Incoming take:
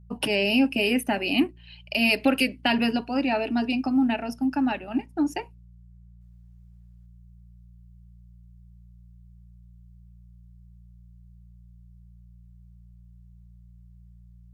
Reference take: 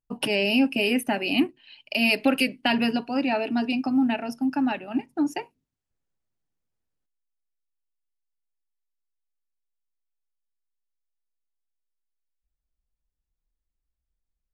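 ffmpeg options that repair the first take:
-af "bandreject=f=58.5:t=h:w=4,bandreject=f=117:t=h:w=4,bandreject=f=175.5:t=h:w=4,asetnsamples=n=441:p=0,asendcmd='6.21 volume volume -7dB',volume=0dB"

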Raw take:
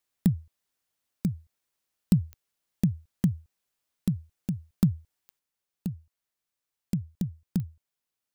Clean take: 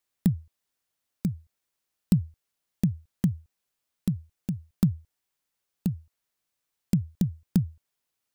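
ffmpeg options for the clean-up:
-af "adeclick=t=4,asetnsamples=n=441:p=0,asendcmd='5.39 volume volume 5dB',volume=0dB"

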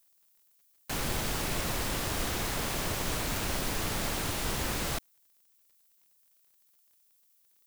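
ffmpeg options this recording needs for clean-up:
-af "adeclick=t=4,agate=range=-21dB:threshold=-59dB"

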